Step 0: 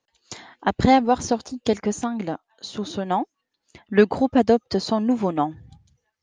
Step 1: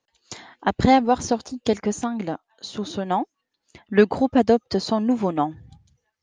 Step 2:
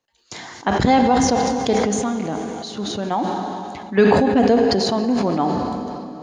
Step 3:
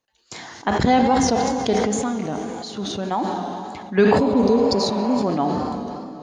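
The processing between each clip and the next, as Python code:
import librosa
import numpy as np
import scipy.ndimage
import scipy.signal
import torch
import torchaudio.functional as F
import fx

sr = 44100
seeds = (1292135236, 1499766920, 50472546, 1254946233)

y1 = x
y2 = fx.rev_plate(y1, sr, seeds[0], rt60_s=3.6, hf_ratio=0.9, predelay_ms=0, drr_db=7.5)
y2 = fx.sustainer(y2, sr, db_per_s=22.0)
y3 = fx.wow_flutter(y2, sr, seeds[1], rate_hz=2.1, depth_cents=62.0)
y3 = fx.spec_repair(y3, sr, seeds[2], start_s=4.21, length_s=0.99, low_hz=570.0, high_hz=3400.0, source='after')
y3 = y3 * librosa.db_to_amplitude(-1.5)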